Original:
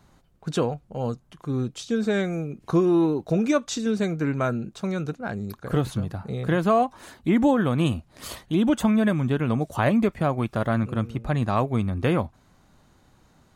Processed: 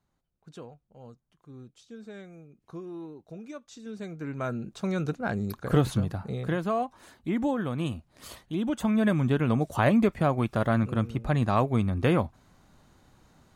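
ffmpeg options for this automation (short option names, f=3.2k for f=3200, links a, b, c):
-af "volume=8dB,afade=t=in:st=3.7:d=0.58:silence=0.334965,afade=t=in:st=4.28:d=0.96:silence=0.266073,afade=t=out:st=5.96:d=0.68:silence=0.354813,afade=t=in:st=8.75:d=0.42:silence=0.446684"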